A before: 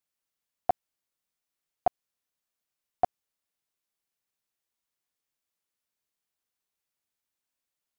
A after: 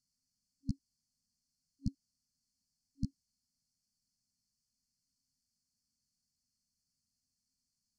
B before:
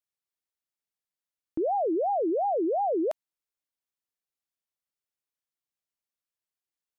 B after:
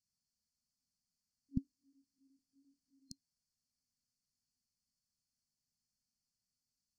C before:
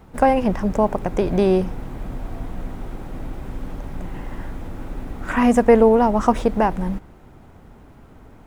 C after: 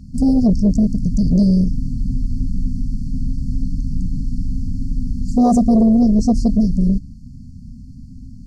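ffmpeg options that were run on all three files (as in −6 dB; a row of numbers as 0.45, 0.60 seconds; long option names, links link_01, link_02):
-af "afftfilt=real='re*(1-between(b*sr/4096,270,4200))':imag='im*(1-between(b*sr/4096,270,4200))':win_size=4096:overlap=0.75,lowpass=5700,aeval=exprs='0.355*sin(PI/2*2.24*val(0)/0.355)':channel_layout=same"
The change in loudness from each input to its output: −11.0, −16.5, +0.5 LU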